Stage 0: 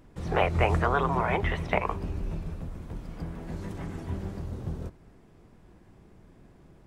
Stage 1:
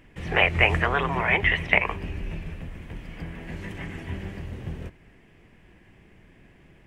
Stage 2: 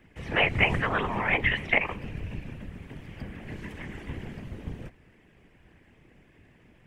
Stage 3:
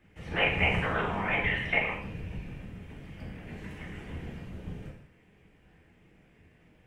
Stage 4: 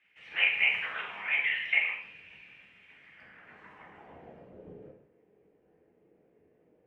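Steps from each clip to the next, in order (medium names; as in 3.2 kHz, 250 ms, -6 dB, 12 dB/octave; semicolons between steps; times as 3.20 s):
high-order bell 2.3 kHz +12.5 dB 1.1 oct
whisper effect; trim -3.5 dB
gated-style reverb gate 230 ms falling, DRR -2.5 dB; trim -7 dB
band-pass sweep 2.5 kHz -> 450 Hz, 2.83–4.70 s; trim +3.5 dB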